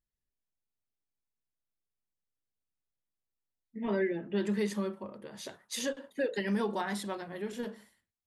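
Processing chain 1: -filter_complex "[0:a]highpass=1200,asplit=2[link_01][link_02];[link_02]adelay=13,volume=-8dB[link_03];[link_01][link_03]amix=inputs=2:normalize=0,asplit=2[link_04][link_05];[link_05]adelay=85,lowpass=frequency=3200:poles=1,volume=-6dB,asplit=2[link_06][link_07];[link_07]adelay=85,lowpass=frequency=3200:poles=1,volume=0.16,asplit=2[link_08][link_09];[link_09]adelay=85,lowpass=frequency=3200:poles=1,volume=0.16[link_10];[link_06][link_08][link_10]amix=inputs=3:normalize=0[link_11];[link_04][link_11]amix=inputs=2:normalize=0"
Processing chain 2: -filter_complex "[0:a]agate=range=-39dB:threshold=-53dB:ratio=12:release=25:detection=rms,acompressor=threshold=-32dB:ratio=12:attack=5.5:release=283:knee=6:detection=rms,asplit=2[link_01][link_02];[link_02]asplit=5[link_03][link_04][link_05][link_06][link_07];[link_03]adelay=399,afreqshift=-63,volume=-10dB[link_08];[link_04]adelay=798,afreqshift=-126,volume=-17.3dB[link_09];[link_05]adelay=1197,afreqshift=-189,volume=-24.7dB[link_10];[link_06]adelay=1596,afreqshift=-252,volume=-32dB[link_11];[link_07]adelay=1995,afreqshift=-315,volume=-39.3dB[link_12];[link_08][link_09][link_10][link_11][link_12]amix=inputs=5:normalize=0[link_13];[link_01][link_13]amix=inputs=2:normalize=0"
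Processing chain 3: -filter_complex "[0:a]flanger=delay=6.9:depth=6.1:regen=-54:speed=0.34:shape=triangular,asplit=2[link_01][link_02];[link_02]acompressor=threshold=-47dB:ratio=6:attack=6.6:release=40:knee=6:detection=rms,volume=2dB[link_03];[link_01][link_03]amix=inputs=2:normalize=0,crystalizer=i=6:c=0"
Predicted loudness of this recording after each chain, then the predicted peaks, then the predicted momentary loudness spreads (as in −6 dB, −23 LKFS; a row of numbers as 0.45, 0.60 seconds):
−41.5, −40.0, −30.5 LKFS; −24.5, −26.0, −11.0 dBFS; 14, 7, 16 LU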